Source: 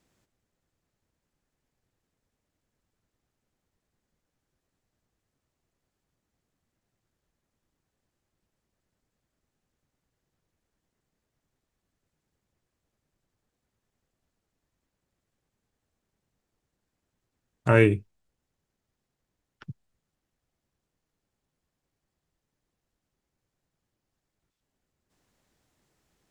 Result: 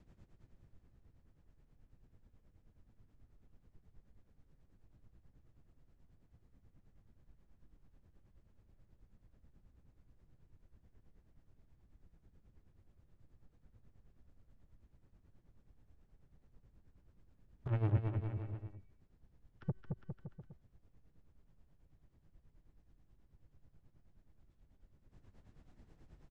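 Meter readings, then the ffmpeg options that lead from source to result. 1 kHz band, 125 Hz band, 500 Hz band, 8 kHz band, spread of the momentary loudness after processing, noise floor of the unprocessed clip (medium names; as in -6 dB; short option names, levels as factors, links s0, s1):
-17.5 dB, -7.0 dB, -22.0 dB, no reading, 18 LU, -85 dBFS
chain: -filter_complex "[0:a]aemphasis=mode=reproduction:type=riaa,bandreject=f=378.9:t=h:w=4,bandreject=f=757.8:t=h:w=4,bandreject=f=1136.7:t=h:w=4,bandreject=f=1515.6:t=h:w=4,bandreject=f=1894.5:t=h:w=4,bandreject=f=2273.4:t=h:w=4,bandreject=f=2652.3:t=h:w=4,bandreject=f=3031.2:t=h:w=4,bandreject=f=3410.1:t=h:w=4,bandreject=f=3789:t=h:w=4,bandreject=f=4167.9:t=h:w=4,bandreject=f=4546.8:t=h:w=4,bandreject=f=4925.7:t=h:w=4,bandreject=f=5304.6:t=h:w=4,bandreject=f=5683.5:t=h:w=4,bandreject=f=6062.4:t=h:w=4,bandreject=f=6441.3:t=h:w=4,bandreject=f=6820.2:t=h:w=4,bandreject=f=7199.1:t=h:w=4,bandreject=f=7578:t=h:w=4,bandreject=f=7956.9:t=h:w=4,bandreject=f=8335.8:t=h:w=4,bandreject=f=8714.7:t=h:w=4,bandreject=f=9093.6:t=h:w=4,bandreject=f=9472.5:t=h:w=4,bandreject=f=9851.4:t=h:w=4,bandreject=f=10230.3:t=h:w=4,bandreject=f=10609.2:t=h:w=4,bandreject=f=10988.1:t=h:w=4,bandreject=f=11367:t=h:w=4,bandreject=f=11745.9:t=h:w=4,bandreject=f=12124.8:t=h:w=4,bandreject=f=12503.7:t=h:w=4,bandreject=f=12882.6:t=h:w=4,bandreject=f=13261.5:t=h:w=4,bandreject=f=13640.4:t=h:w=4,bandreject=f=14019.3:t=h:w=4,bandreject=f=14398.2:t=h:w=4,acrossover=split=460|3000[s0][s1][s2];[s1]acompressor=threshold=0.0562:ratio=6[s3];[s0][s3][s2]amix=inputs=3:normalize=0,alimiter=limit=0.316:level=0:latency=1,acompressor=threshold=0.0631:ratio=12,asoftclip=type=tanh:threshold=0.0266,tremolo=f=9.3:d=0.78,aecho=1:1:220|407|566|701.1|815.9:0.631|0.398|0.251|0.158|0.1,volume=1.58"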